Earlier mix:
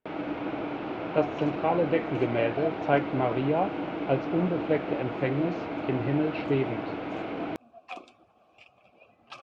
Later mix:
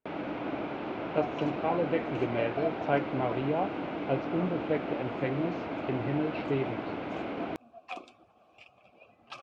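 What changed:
speech -4.0 dB; reverb: off

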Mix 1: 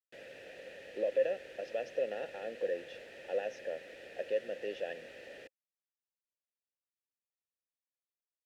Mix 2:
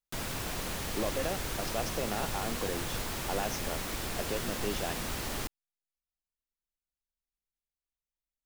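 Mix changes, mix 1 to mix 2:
speech -7.5 dB; master: remove vowel filter e

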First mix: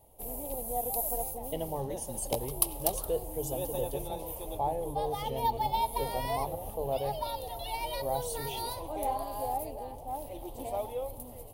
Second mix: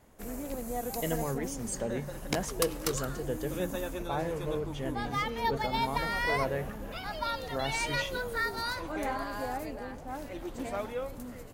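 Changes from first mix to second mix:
speech: entry -0.50 s; master: remove FFT filter 120 Hz 0 dB, 190 Hz -11 dB, 300 Hz -6 dB, 460 Hz -1 dB, 860 Hz +5 dB, 1.5 kHz -23 dB, 3.1 kHz -2 dB, 4.9 kHz -6 dB, 7.2 kHz -8 dB, 10 kHz +9 dB

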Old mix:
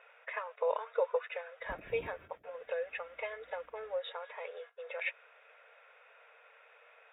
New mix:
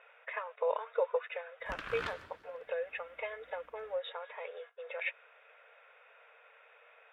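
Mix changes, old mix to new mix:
background: remove brick-wall FIR band-stop 760–12000 Hz; reverb: on, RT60 1.3 s

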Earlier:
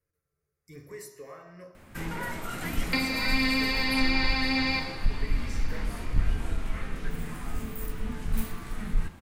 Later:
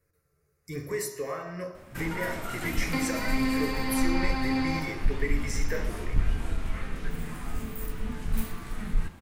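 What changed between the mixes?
speech +11.0 dB; second sound: remove frequency weighting D

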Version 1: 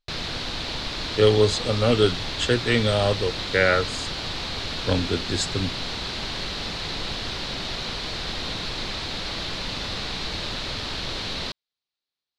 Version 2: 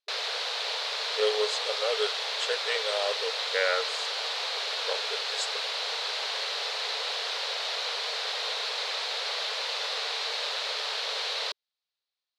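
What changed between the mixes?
speech -7.0 dB; master: add brick-wall FIR high-pass 410 Hz

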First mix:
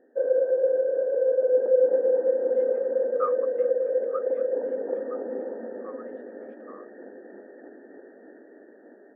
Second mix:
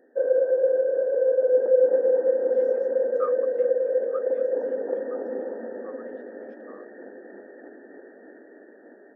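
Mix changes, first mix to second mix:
speech -6.5 dB; master: remove distance through air 490 m

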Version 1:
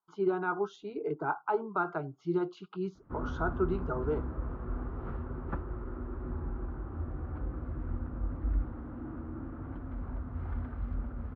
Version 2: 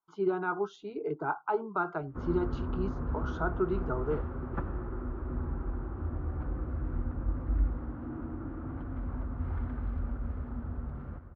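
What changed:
background: entry -0.95 s; reverb: on, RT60 1.4 s

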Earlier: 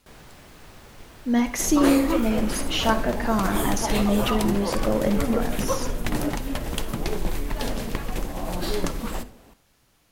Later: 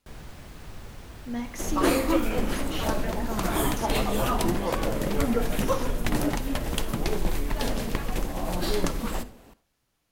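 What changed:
speech -11.5 dB; first sound: add bass shelf 160 Hz +9 dB

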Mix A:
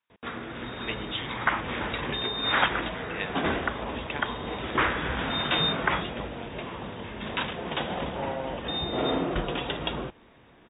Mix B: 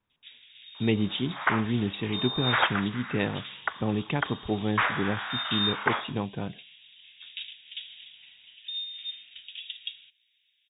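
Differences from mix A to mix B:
speech: remove band-pass filter 2.5 kHz, Q 0.59; first sound: add inverse Chebyshev high-pass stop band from 1.2 kHz, stop band 50 dB

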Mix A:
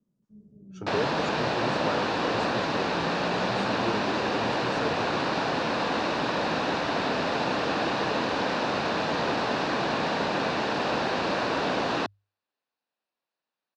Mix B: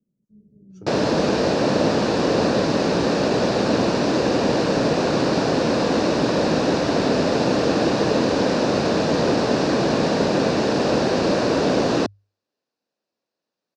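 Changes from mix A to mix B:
speech -3.5 dB; second sound +11.0 dB; master: add high-order bell 1.7 kHz -10 dB 2.7 oct

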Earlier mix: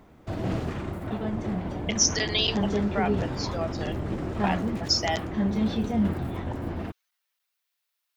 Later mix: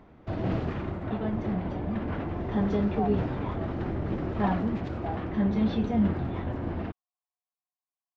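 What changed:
speech: add cascade formant filter a; master: add Gaussian low-pass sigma 1.9 samples

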